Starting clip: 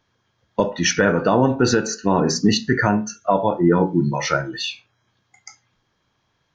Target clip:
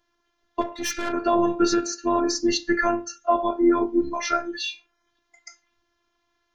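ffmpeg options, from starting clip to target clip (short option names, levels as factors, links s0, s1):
-filter_complex "[0:a]asettb=1/sr,asplit=3[s0][s1][s2];[s0]atrim=end=0.614[s3];[s1]atrim=start=0.61:end=1.13,asetpts=PTS-STARTPTS,afade=t=in:d=0.004:c=qsin,afade=t=out:st=0.516:d=0.004:c=qsin,aeval=exprs='(tanh(8.91*val(0)+0.3)-tanh(0.3))/8.91':c=same[s4];[s2]atrim=start=1.126[s5];[s3][s4]acrossfade=d=0.004:c1=hsin:c2=qsin[s6];[s6][s5]acrossfade=d=0.004:c1=qsin:c2=hsin,afftfilt=real='hypot(re,im)*cos(PI*b)':imag='0':win_size=512:overlap=0.75"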